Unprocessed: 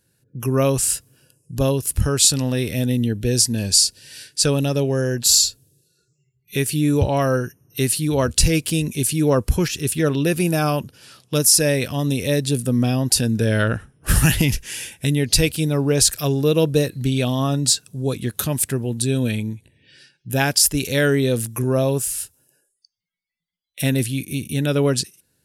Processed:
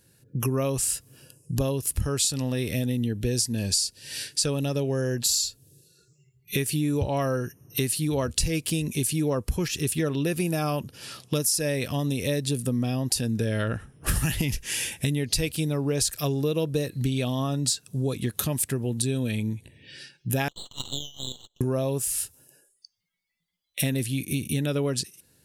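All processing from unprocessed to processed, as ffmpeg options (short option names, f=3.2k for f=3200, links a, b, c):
-filter_complex "[0:a]asettb=1/sr,asplit=3[a][b][c];[a]atrim=end=20.484[d];[b]atrim=start=20.48:end=21.61,asetpts=PTS-STARTPTS,afade=t=in:d=0.004:c=qsin,afade=t=out:st=1.126:d=0.004:c=qsin,asuperpass=centerf=3500:order=20:qfactor=2.5,aeval=exprs='max(val(0),0)':c=same[e];[c]atrim=start=21.606[f];[d][e]acrossfade=d=0.004:c1=hsin:c2=qsin[g];[g][f]acrossfade=d=0.004:c1=qsin:c2=hsin,acompressor=threshold=-30dB:ratio=4,bandreject=f=1.5k:w=16,volume=5dB"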